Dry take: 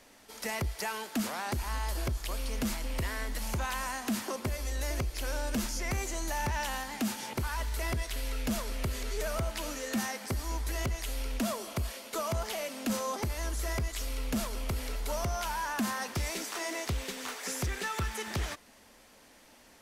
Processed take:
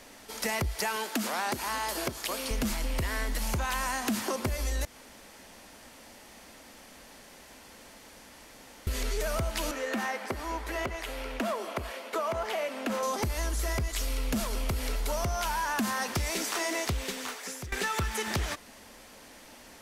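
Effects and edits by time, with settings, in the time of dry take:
0.96–2.51 s: high-pass 210 Hz
4.85–8.87 s: room tone
9.71–13.03 s: three-band isolator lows -14 dB, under 280 Hz, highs -13 dB, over 2.9 kHz
16.80–17.72 s: fade out, to -19 dB
whole clip: compression, threshold -34 dBFS; trim +7 dB

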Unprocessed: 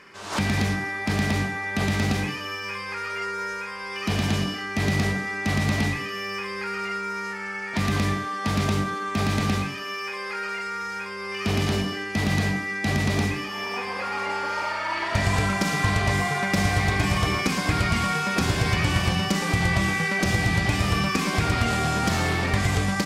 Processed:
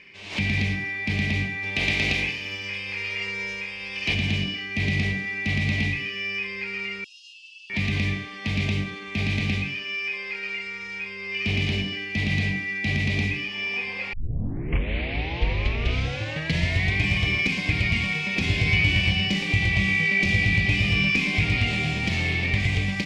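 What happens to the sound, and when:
1.62–4.13 s: spectral peaks clipped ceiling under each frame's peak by 15 dB
7.04–7.70 s: brick-wall FIR band-pass 2.5–11 kHz
14.13 s: tape start 2.84 s
18.40–21.93 s: doubling 20 ms -6.5 dB
whole clip: FFT filter 110 Hz 0 dB, 680 Hz -9 dB, 1.4 kHz -17 dB, 2.3 kHz +8 dB, 12 kHz -20 dB

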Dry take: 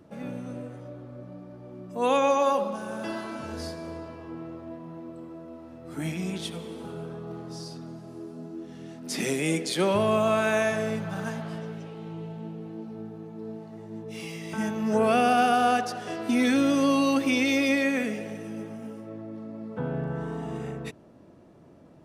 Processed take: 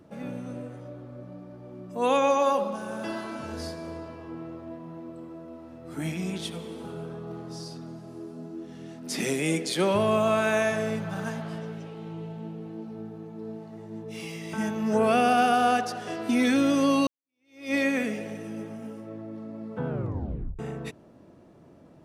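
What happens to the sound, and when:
17.07–17.75 s: fade in exponential
19.88 s: tape stop 0.71 s

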